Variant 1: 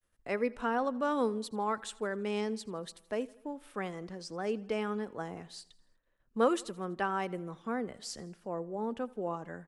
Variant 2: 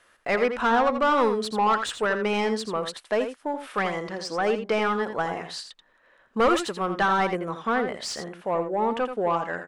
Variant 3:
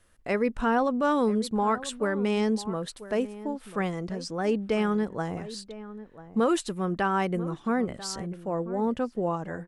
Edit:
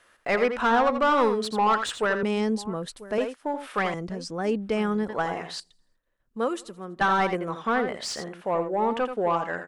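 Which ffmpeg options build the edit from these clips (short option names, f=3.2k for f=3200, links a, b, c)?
-filter_complex "[2:a]asplit=2[a][b];[1:a]asplit=4[c][d][e][f];[c]atrim=end=2.232[g];[a]atrim=start=2.228:end=3.182[h];[d]atrim=start=3.178:end=3.942[i];[b]atrim=start=3.938:end=5.092[j];[e]atrim=start=5.088:end=5.602[k];[0:a]atrim=start=5.598:end=7.012[l];[f]atrim=start=7.008[m];[g][h]acrossfade=d=0.004:c1=hsin:c2=hsin[n];[n][i]acrossfade=d=0.004:c1=hsin:c2=hsin[o];[o][j]acrossfade=d=0.004:c1=hsin:c2=hsin[p];[p][k]acrossfade=d=0.004:c1=hsin:c2=hsin[q];[q][l]acrossfade=d=0.004:c1=hsin:c2=hsin[r];[r][m]acrossfade=d=0.004:c1=hsin:c2=hsin"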